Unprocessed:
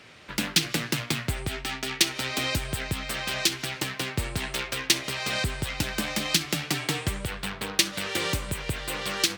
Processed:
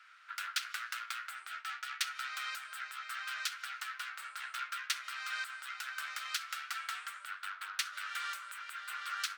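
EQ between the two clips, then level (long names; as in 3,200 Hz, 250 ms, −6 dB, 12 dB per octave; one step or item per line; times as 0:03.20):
four-pole ladder high-pass 1,300 Hz, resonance 80%
−2.5 dB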